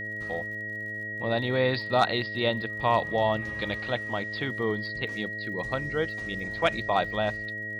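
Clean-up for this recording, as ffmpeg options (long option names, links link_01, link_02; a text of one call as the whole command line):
ffmpeg -i in.wav -af "adeclick=threshold=4,bandreject=frequency=106.5:width_type=h:width=4,bandreject=frequency=213:width_type=h:width=4,bandreject=frequency=319.5:width_type=h:width=4,bandreject=frequency=426:width_type=h:width=4,bandreject=frequency=532.5:width_type=h:width=4,bandreject=frequency=639:width_type=h:width=4,bandreject=frequency=1900:width=30" out.wav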